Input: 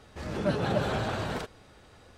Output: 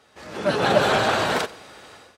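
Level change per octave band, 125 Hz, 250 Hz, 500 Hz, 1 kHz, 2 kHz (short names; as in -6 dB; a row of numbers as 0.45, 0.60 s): +0.5, +4.0, +9.5, +12.0, +13.0 dB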